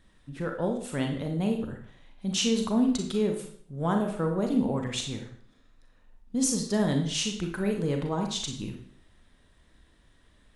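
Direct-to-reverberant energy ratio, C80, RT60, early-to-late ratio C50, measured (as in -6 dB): 2.5 dB, 10.0 dB, 0.55 s, 6.0 dB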